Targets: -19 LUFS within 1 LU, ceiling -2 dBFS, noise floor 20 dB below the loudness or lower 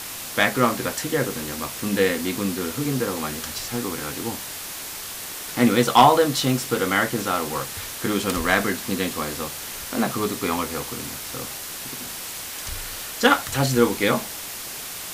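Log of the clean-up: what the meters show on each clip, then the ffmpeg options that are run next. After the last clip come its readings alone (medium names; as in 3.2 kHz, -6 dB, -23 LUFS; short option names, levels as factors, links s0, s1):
noise floor -34 dBFS; noise floor target -44 dBFS; loudness -23.5 LUFS; peak level -3.5 dBFS; loudness target -19.0 LUFS
-> -af "afftdn=nr=10:nf=-34"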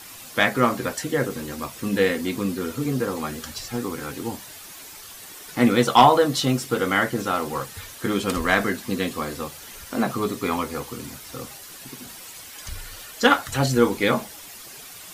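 noise floor -42 dBFS; noise floor target -43 dBFS
-> -af "afftdn=nr=6:nf=-42"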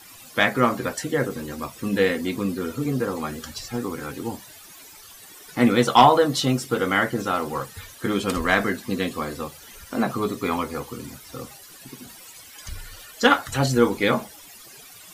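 noise floor -46 dBFS; loudness -23.0 LUFS; peak level -3.5 dBFS; loudness target -19.0 LUFS
-> -af "volume=1.58,alimiter=limit=0.794:level=0:latency=1"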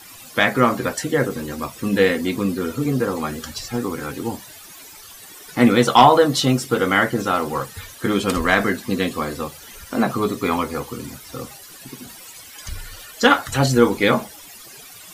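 loudness -19.5 LUFS; peak level -2.0 dBFS; noise floor -42 dBFS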